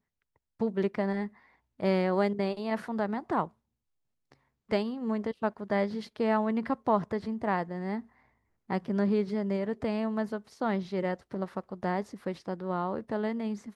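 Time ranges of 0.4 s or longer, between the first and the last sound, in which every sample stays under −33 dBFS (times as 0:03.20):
0:01.27–0:01.80
0:03.45–0:04.71
0:08.00–0:08.70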